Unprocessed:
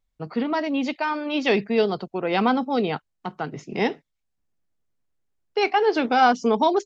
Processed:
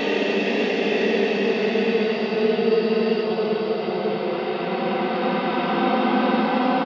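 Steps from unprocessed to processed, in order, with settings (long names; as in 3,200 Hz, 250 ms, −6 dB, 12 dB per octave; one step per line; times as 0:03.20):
extreme stretch with random phases 6.1×, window 1.00 s, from 0:01.40
on a send: single-tap delay 90 ms −6.5 dB
on the sum: frozen spectrum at 0:02.72, 0.53 s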